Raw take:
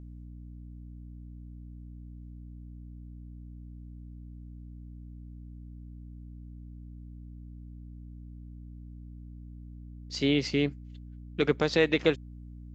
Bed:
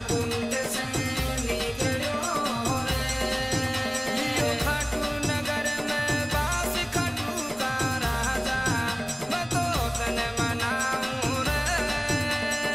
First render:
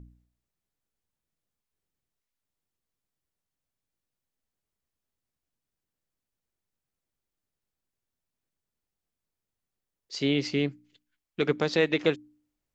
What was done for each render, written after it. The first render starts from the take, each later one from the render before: de-hum 60 Hz, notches 5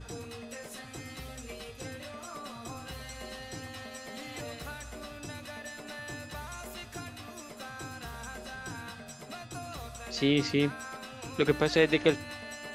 add bed -15.5 dB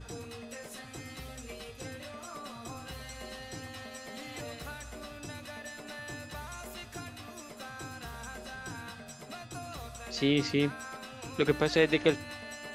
gain -1 dB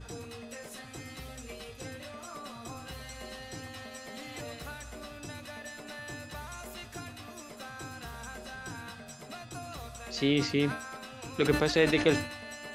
sustainer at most 110 dB/s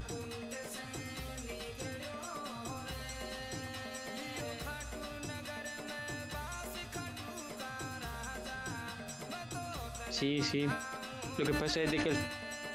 upward compressor, threshold -39 dBFS; limiter -23 dBFS, peak gain reduction 11.5 dB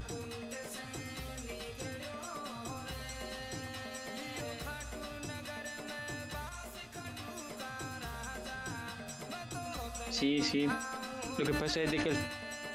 6.49–7.05 detuned doubles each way 25 cents; 9.65–11.41 comb 4 ms

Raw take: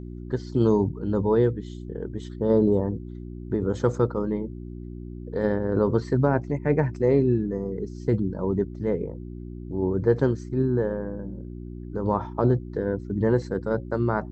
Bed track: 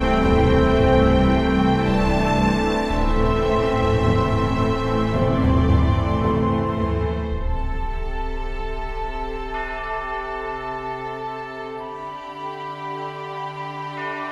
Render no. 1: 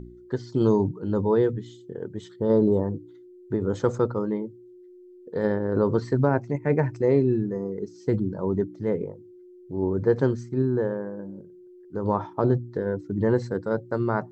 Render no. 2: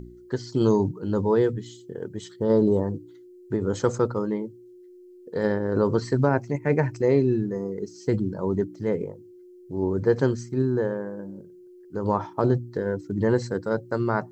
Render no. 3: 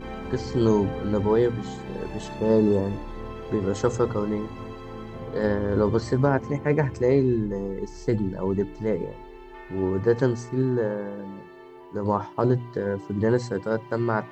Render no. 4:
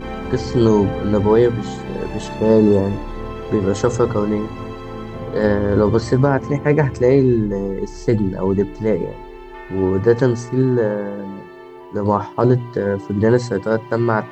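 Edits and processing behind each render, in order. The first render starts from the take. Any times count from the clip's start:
de-hum 60 Hz, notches 5
high shelf 2900 Hz +10.5 dB; notch 3600 Hz, Q 14
add bed track -17.5 dB
gain +7.5 dB; limiter -3 dBFS, peak gain reduction 3 dB

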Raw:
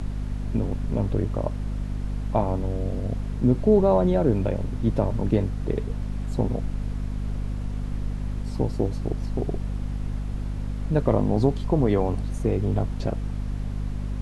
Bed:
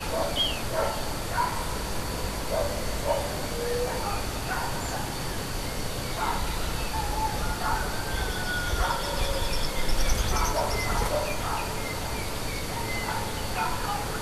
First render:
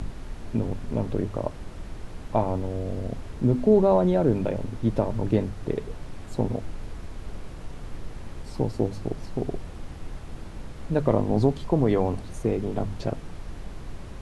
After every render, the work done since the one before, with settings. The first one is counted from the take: de-hum 50 Hz, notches 5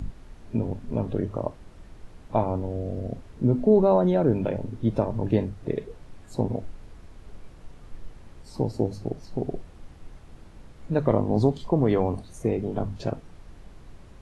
noise print and reduce 9 dB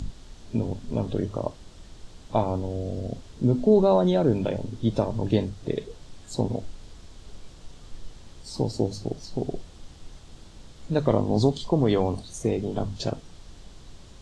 band shelf 5100 Hz +11 dB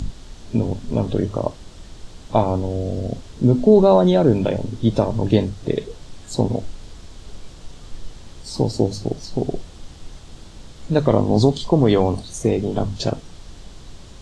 gain +6.5 dB; limiter -2 dBFS, peak gain reduction 1.5 dB

